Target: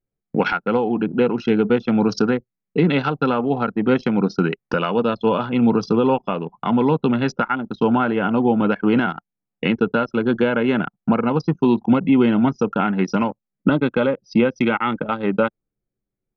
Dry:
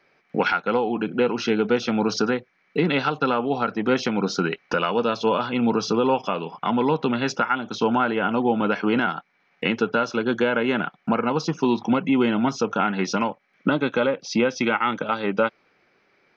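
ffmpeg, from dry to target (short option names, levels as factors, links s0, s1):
-af "lowshelf=f=300:g=9,anlmdn=251"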